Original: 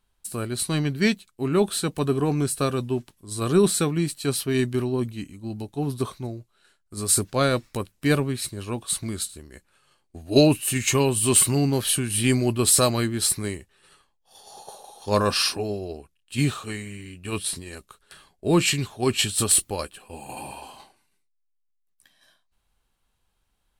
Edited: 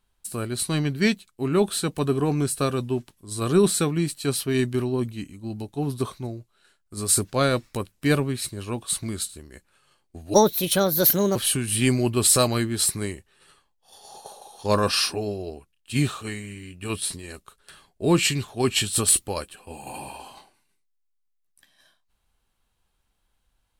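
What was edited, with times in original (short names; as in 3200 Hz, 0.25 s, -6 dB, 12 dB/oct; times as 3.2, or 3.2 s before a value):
10.34–11.78 speed 142%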